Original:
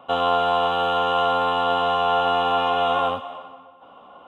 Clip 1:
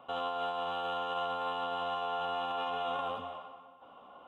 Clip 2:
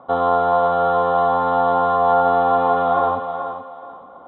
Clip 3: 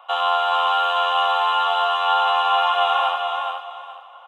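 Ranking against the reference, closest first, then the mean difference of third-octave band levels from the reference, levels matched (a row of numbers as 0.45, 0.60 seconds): 1, 2, 3; 2.0, 5.0, 8.5 decibels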